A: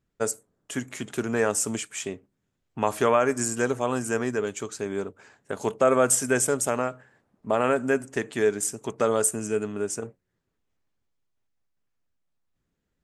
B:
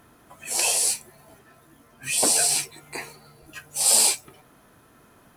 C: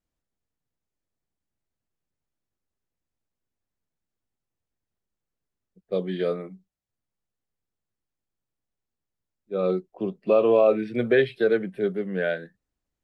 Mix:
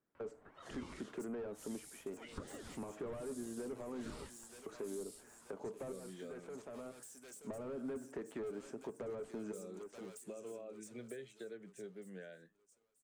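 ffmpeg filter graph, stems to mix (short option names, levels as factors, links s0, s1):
-filter_complex "[0:a]highpass=260,volume=26.6,asoftclip=hard,volume=0.0376,volume=0.708,asplit=3[s0][s1][s2];[s0]atrim=end=4.1,asetpts=PTS-STARTPTS,afade=t=out:st=4.096:d=0.004:c=hsin[s3];[s1]atrim=start=4.1:end=4.66,asetpts=PTS-STARTPTS,volume=0[s4];[s2]atrim=start=4.66,asetpts=PTS-STARTPTS,afade=t=in:d=0.004:c=hsin[s5];[s3][s4][s5]concat=n=3:v=0:a=1,asplit=2[s6][s7];[s7]volume=0.075[s8];[1:a]aeval=exprs='val(0)*sin(2*PI*820*n/s+820*0.55/2.1*sin(2*PI*2.1*n/s))':c=same,adelay=150,volume=0.398,asplit=2[s9][s10];[s10]volume=0.0841[s11];[2:a]acompressor=threshold=0.0355:ratio=2.5,volume=0.119,asplit=2[s12][s13];[s13]apad=whole_len=574817[s14];[s6][s14]sidechaincompress=threshold=0.00126:ratio=8:attack=16:release=1220[s15];[s15][s9]amix=inputs=2:normalize=0,lowpass=1400,acompressor=threshold=0.00891:ratio=2.5,volume=1[s16];[s8][s11]amix=inputs=2:normalize=0,aecho=0:1:929|1858|2787|3716|4645:1|0.32|0.102|0.0328|0.0105[s17];[s12][s16][s17]amix=inputs=3:normalize=0,highshelf=f=3600:g=10,acrossover=split=480[s18][s19];[s19]acompressor=threshold=0.00251:ratio=10[s20];[s18][s20]amix=inputs=2:normalize=0"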